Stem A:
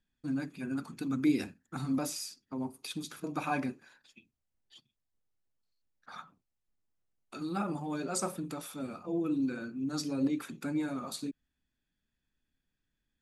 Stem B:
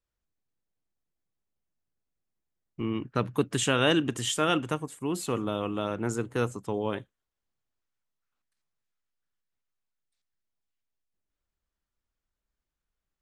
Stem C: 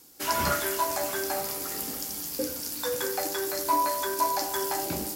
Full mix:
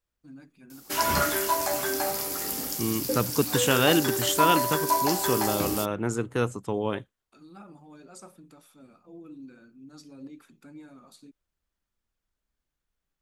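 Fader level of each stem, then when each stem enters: -13.5 dB, +2.0 dB, +2.0 dB; 0.00 s, 0.00 s, 0.70 s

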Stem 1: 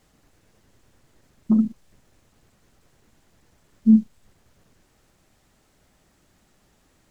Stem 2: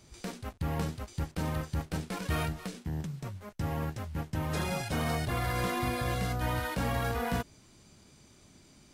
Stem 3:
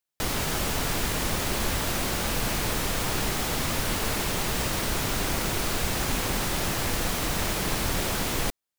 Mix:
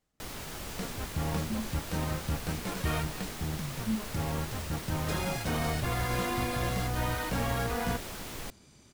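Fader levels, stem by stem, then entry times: -18.0 dB, 0.0 dB, -13.0 dB; 0.00 s, 0.55 s, 0.00 s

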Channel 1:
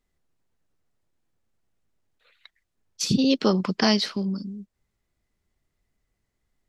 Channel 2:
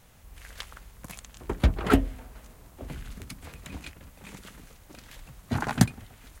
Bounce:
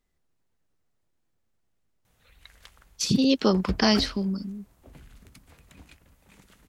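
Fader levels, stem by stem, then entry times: -0.5 dB, -10.5 dB; 0.00 s, 2.05 s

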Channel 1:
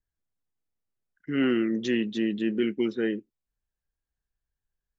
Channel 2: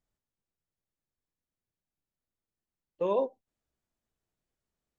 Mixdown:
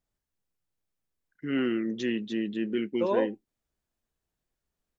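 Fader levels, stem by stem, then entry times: -3.5 dB, +1.0 dB; 0.15 s, 0.00 s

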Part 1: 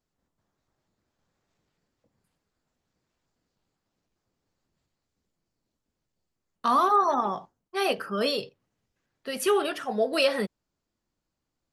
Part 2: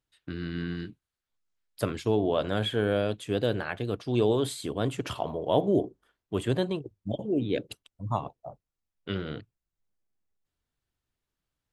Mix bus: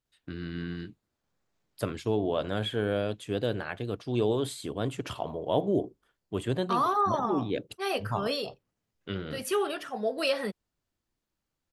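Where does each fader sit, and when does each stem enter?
-4.5 dB, -2.5 dB; 0.05 s, 0.00 s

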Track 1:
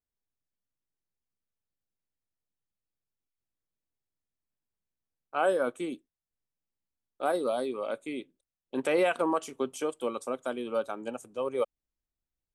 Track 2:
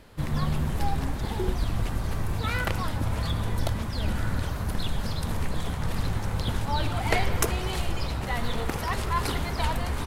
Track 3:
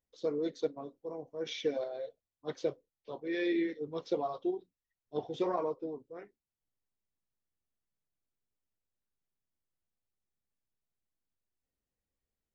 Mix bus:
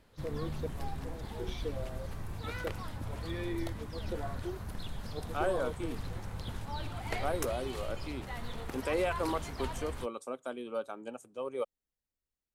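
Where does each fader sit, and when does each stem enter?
-6.0 dB, -12.0 dB, -7.0 dB; 0.00 s, 0.00 s, 0.00 s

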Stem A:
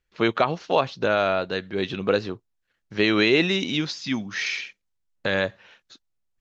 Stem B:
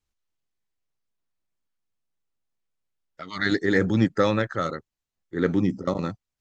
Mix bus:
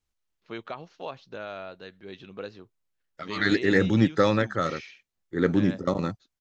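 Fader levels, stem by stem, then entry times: -16.0 dB, 0.0 dB; 0.30 s, 0.00 s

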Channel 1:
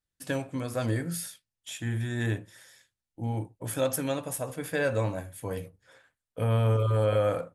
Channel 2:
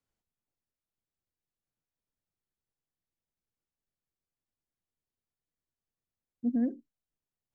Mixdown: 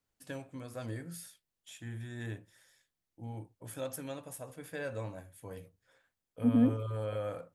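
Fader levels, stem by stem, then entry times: -11.5 dB, +3.0 dB; 0.00 s, 0.00 s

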